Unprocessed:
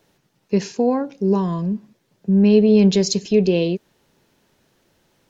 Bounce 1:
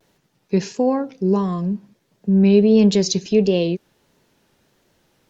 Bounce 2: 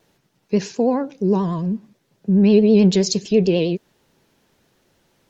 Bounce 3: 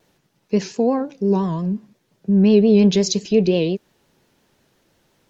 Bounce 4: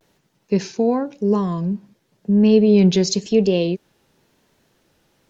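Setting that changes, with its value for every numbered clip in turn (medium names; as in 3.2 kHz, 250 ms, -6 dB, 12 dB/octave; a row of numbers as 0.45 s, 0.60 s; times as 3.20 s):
vibrato, rate: 1.5 Hz, 9.3 Hz, 5.7 Hz, 0.95 Hz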